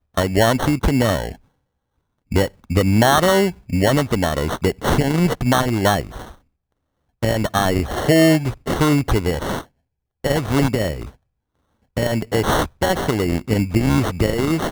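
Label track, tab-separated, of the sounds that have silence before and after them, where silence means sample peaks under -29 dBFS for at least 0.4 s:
2.320000	6.310000	sound
7.230000	9.610000	sound
10.240000	11.090000	sound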